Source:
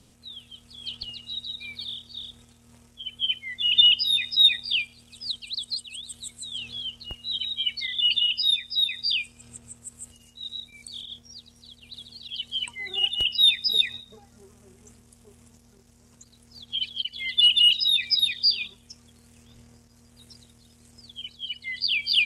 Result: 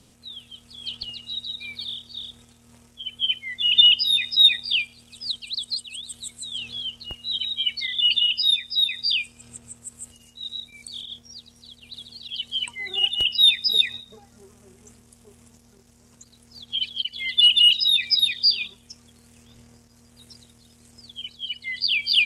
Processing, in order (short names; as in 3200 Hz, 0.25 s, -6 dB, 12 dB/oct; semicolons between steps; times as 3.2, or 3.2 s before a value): low shelf 110 Hz -4 dB; gain +2.5 dB